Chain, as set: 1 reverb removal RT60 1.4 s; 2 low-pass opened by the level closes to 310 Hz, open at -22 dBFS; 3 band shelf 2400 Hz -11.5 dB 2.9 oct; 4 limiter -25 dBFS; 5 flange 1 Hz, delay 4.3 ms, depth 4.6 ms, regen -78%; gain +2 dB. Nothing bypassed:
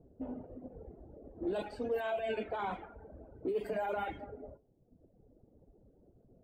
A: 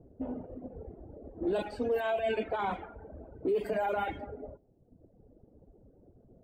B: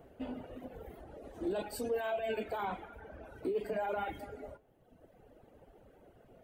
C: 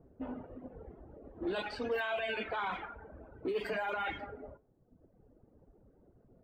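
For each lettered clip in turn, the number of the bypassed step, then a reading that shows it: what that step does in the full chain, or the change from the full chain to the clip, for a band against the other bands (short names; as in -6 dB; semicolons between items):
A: 5, crest factor change -2.5 dB; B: 2, momentary loudness spread change -2 LU; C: 3, 4 kHz band +8.5 dB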